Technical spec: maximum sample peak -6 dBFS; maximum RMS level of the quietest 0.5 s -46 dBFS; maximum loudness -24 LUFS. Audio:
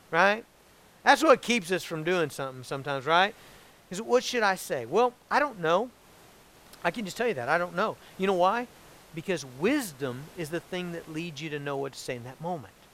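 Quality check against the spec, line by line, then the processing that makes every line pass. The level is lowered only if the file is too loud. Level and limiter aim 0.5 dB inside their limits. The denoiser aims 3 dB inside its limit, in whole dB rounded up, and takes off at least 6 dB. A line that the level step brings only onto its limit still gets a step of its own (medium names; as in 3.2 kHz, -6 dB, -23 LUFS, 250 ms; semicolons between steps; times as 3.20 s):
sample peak -5.0 dBFS: fail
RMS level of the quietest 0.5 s -58 dBFS: pass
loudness -28.0 LUFS: pass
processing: peak limiter -6.5 dBFS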